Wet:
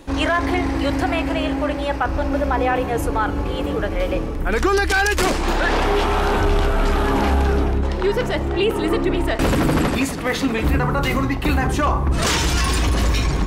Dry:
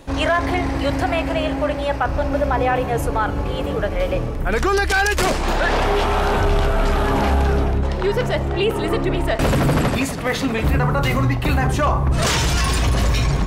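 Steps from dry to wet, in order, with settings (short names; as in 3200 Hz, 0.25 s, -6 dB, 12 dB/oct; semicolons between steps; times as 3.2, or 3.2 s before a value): thirty-one-band EQ 125 Hz -9 dB, 315 Hz +5 dB, 630 Hz -4 dB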